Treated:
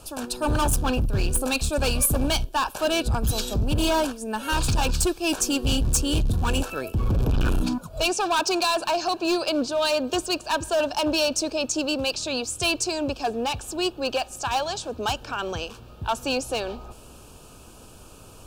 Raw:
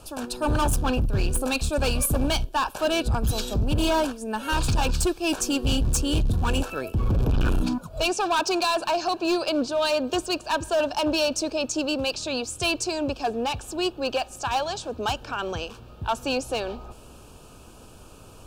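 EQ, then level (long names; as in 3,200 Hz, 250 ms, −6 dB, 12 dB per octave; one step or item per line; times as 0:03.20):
high-shelf EQ 4,600 Hz +4.5 dB
0.0 dB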